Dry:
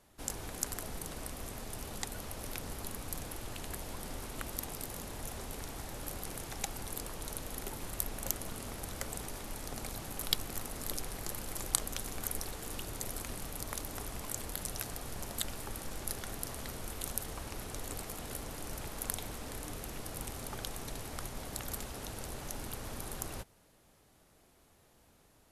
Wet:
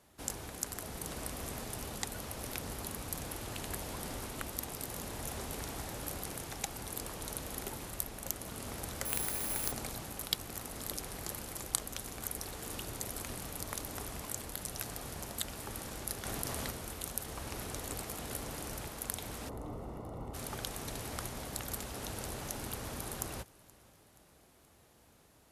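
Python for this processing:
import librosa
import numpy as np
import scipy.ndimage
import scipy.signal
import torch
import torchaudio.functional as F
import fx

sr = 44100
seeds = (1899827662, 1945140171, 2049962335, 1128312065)

p1 = scipy.signal.sosfilt(scipy.signal.butter(2, 46.0, 'highpass', fs=sr, output='sos'), x)
p2 = fx.rider(p1, sr, range_db=3, speed_s=0.5)
p3 = fx.savgol(p2, sr, points=65, at=(19.48, 20.33), fade=0.02)
p4 = p3 + fx.echo_feedback(p3, sr, ms=476, feedback_pct=54, wet_db=-23.5, dry=0)
p5 = fx.resample_bad(p4, sr, factor=4, down='none', up='zero_stuff', at=(9.05, 9.72))
y = fx.env_flatten(p5, sr, amount_pct=70, at=(16.25, 16.71))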